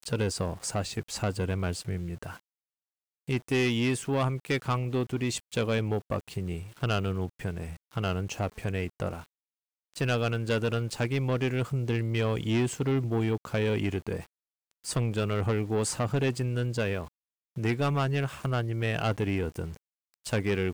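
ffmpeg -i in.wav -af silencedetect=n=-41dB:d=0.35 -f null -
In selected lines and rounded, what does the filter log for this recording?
silence_start: 2.37
silence_end: 3.28 | silence_duration: 0.92
silence_start: 9.22
silence_end: 9.94 | silence_duration: 0.72
silence_start: 14.24
silence_end: 14.85 | silence_duration: 0.61
silence_start: 17.08
silence_end: 17.57 | silence_duration: 0.49
silence_start: 19.77
silence_end: 20.25 | silence_duration: 0.48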